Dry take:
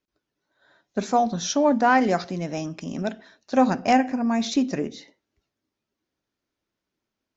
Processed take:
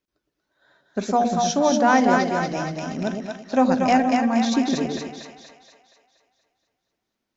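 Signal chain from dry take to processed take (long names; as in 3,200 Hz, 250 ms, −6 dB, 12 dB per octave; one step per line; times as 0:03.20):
echo with a time of its own for lows and highs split 620 Hz, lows 113 ms, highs 237 ms, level −3 dB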